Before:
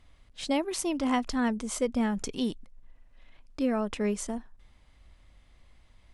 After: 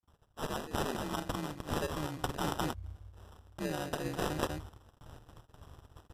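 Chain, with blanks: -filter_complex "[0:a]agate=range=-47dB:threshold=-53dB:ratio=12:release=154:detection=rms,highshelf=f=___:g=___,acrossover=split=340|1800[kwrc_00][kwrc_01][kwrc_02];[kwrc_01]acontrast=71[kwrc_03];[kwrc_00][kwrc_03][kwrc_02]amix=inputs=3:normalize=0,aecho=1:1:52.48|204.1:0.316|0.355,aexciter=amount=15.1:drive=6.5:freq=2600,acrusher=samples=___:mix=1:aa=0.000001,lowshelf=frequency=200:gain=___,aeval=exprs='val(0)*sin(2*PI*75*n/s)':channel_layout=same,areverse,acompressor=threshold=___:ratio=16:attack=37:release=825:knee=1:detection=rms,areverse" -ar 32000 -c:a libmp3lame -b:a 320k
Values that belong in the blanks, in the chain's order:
3900, -9.5, 20, 5, -30dB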